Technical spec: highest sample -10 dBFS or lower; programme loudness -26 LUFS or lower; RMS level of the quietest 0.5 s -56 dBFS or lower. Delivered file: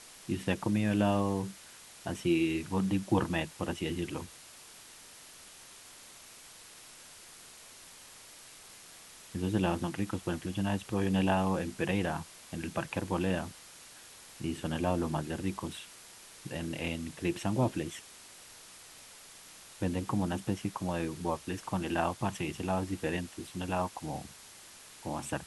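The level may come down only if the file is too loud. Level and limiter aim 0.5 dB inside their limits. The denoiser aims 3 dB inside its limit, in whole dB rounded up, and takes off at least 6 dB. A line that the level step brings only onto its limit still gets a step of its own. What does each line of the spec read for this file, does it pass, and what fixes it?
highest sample -14.0 dBFS: pass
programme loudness -33.5 LUFS: pass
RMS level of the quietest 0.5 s -53 dBFS: fail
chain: noise reduction 6 dB, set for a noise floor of -53 dBFS

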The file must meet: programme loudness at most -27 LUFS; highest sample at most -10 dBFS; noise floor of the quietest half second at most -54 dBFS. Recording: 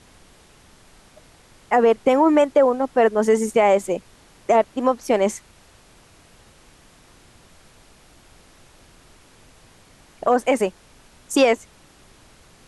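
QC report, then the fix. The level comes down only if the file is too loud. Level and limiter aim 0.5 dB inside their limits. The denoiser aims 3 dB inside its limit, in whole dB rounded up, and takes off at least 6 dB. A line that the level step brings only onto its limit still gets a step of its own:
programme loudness -19.5 LUFS: fail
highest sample -5.5 dBFS: fail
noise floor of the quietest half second -52 dBFS: fail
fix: trim -8 dB

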